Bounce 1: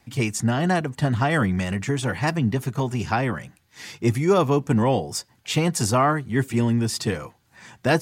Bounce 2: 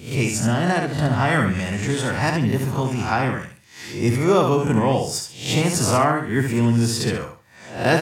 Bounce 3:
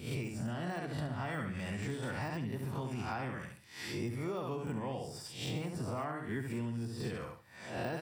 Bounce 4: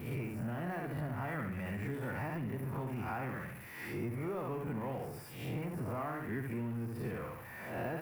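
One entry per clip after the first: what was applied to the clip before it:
peak hold with a rise ahead of every peak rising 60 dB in 0.46 s; on a send: repeating echo 68 ms, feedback 25%, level −5.5 dB
de-essing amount 70%; notch filter 6,600 Hz, Q 5.7; downward compressor 12 to 1, threshold −28 dBFS, peak gain reduction 16 dB; level −6.5 dB
converter with a step at zero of −41 dBFS; flat-topped bell 5,200 Hz −15 dB; level −2.5 dB

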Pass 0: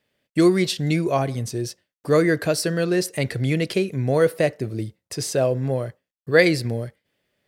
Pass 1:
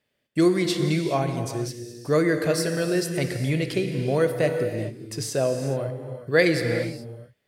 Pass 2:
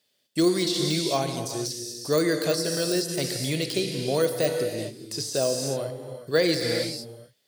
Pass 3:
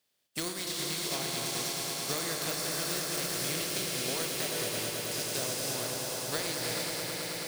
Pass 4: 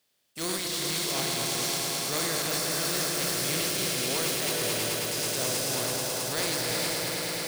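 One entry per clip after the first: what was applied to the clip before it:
reverb whose tail is shaped and stops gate 450 ms flat, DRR 5.5 dB; level −3.5 dB
high-pass filter 240 Hz 6 dB per octave; de-essing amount 90%; high shelf with overshoot 3,000 Hz +10 dB, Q 1.5
compressing power law on the bin magnitudes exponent 0.5; downward compressor, threshold −26 dBFS, peak gain reduction 10.5 dB; echo that builds up and dies away 108 ms, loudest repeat 5, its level −8 dB; level −6 dB
transient designer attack −10 dB, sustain +10 dB; level +4.5 dB

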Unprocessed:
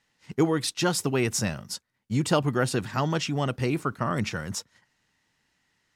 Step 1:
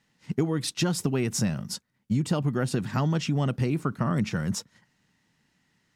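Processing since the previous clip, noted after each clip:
parametric band 180 Hz +10 dB 1.5 octaves
downward compressor 6 to 1, threshold −22 dBFS, peak gain reduction 10.5 dB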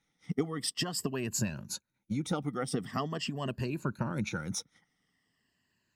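rippled gain that drifts along the octave scale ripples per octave 1.4, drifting −0.44 Hz, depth 14 dB
harmonic and percussive parts rebalanced harmonic −9 dB
level −5 dB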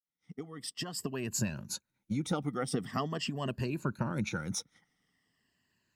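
fade in at the beginning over 1.51 s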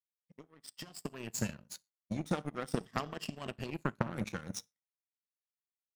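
reverb whose tail is shaped and stops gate 160 ms falling, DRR 9.5 dB
power curve on the samples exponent 2
level +6 dB

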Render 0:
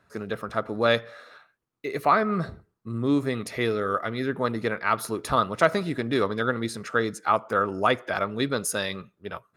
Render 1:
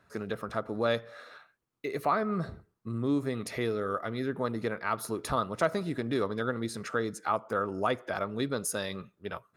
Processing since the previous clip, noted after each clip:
dynamic equaliser 2,400 Hz, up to −5 dB, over −38 dBFS, Q 0.72
in parallel at +1 dB: downward compressor, threshold −32 dBFS, peak gain reduction 16 dB
on the sum: level −7.5 dB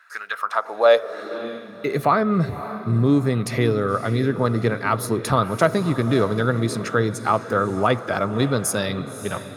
feedback delay with all-pass diffusion 568 ms, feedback 44%, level −12.5 dB
high-pass filter sweep 1,500 Hz → 110 Hz, 0:00.25–0:02.11
level +9 dB

